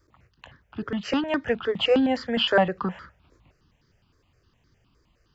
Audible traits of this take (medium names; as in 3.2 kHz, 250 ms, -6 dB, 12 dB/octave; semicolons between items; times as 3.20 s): notches that jump at a steady rate 9.7 Hz 770–2700 Hz